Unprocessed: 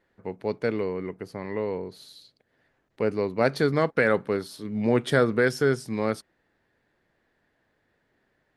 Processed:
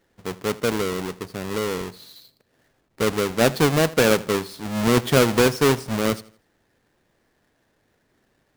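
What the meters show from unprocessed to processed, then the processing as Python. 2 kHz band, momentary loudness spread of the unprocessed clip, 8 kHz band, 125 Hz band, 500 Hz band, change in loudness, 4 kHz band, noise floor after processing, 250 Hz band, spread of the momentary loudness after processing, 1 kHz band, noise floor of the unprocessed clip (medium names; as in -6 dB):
+3.0 dB, 12 LU, +16.0 dB, +5.5 dB, +3.0 dB, +4.5 dB, +12.0 dB, -68 dBFS, +5.0 dB, 13 LU, +5.5 dB, -72 dBFS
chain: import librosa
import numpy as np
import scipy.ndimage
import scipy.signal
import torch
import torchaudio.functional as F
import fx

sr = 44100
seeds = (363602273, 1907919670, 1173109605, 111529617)

y = fx.halfwave_hold(x, sr)
y = fx.echo_feedback(y, sr, ms=82, feedback_pct=35, wet_db=-20.0)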